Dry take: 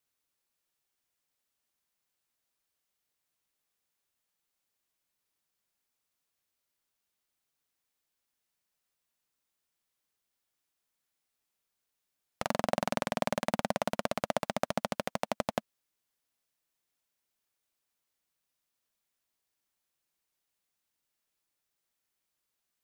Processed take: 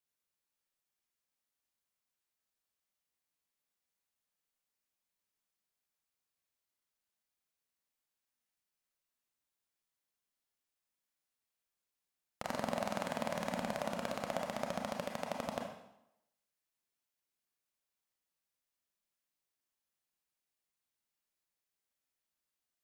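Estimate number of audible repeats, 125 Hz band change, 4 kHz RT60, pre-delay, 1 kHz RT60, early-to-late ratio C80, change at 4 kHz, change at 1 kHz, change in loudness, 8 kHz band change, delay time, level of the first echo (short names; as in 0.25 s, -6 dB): none, -6.0 dB, 0.70 s, 27 ms, 0.85 s, 7.0 dB, -6.0 dB, -5.5 dB, -5.5 dB, -6.0 dB, none, none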